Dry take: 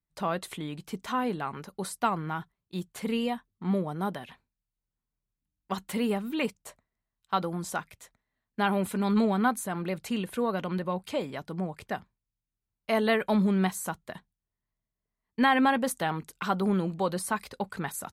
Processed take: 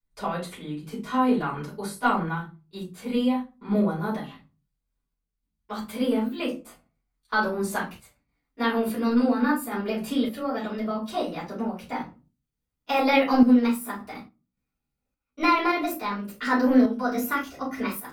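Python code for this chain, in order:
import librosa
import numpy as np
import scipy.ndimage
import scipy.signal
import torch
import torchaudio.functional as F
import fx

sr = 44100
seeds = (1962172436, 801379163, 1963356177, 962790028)

y = fx.pitch_glide(x, sr, semitones=5.0, runs='starting unshifted')
y = fx.room_shoebox(y, sr, seeds[0], volume_m3=130.0, walls='furnished', distance_m=4.7)
y = fx.tremolo_random(y, sr, seeds[1], hz=3.5, depth_pct=55)
y = y * librosa.db_to_amplitude(-4.0)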